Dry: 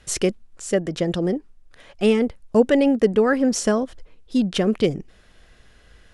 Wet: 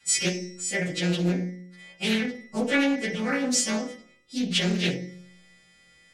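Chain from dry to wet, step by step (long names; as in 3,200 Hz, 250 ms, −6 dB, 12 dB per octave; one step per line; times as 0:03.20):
every partial snapped to a pitch grid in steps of 2 semitones
dynamic equaliser 3,200 Hz, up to +5 dB, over −36 dBFS, Q 1.1
tuned comb filter 180 Hz, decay 0.91 s, harmonics all, mix 80%
convolution reverb RT60 0.40 s, pre-delay 3 ms, DRR −5 dB
highs frequency-modulated by the lows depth 0.39 ms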